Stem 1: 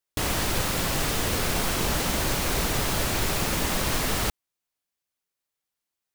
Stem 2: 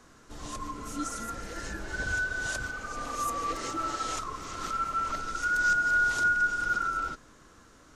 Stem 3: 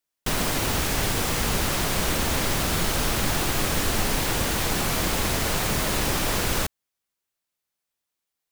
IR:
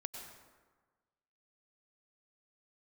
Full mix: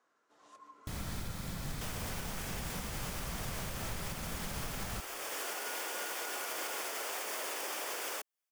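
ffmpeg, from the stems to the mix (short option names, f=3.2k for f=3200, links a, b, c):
-filter_complex "[0:a]lowshelf=f=260:t=q:w=1.5:g=7,bandreject=f=2.8k:w=12,adelay=700,volume=-15dB,asplit=2[a][b];[b]volume=-20dB[c];[1:a]highpass=530,highshelf=f=2.9k:g=-11.5,volume=-14.5dB[d];[2:a]highpass=f=400:w=0.5412,highpass=f=400:w=1.3066,equalizer=f=4k:w=7.9:g=-11,adelay=1550,volume=-5dB[e];[d][e]amix=inputs=2:normalize=0,alimiter=level_in=5dB:limit=-24dB:level=0:latency=1:release=184,volume=-5dB,volume=0dB[f];[3:a]atrim=start_sample=2205[g];[c][g]afir=irnorm=-1:irlink=0[h];[a][f][h]amix=inputs=3:normalize=0,alimiter=level_in=4.5dB:limit=-24dB:level=0:latency=1:release=402,volume=-4.5dB"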